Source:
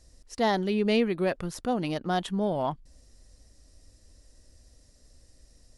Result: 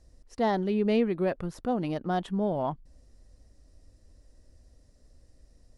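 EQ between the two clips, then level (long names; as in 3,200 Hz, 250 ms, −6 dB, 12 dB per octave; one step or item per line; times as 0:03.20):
high-shelf EQ 2,100 Hz −11 dB
0.0 dB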